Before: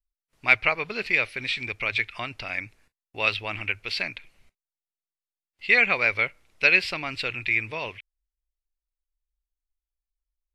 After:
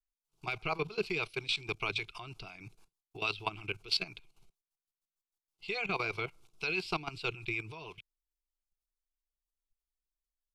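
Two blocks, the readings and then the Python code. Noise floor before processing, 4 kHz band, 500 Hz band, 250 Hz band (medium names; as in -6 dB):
under -85 dBFS, -5.5 dB, -6.5 dB, -4.5 dB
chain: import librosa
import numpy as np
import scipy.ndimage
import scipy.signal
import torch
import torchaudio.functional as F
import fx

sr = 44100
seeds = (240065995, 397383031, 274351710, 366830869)

y = fx.rotary(x, sr, hz=6.3)
y = fx.level_steps(y, sr, step_db=16)
y = fx.fixed_phaser(y, sr, hz=370.0, stages=8)
y = F.gain(torch.from_numpy(y), 6.5).numpy()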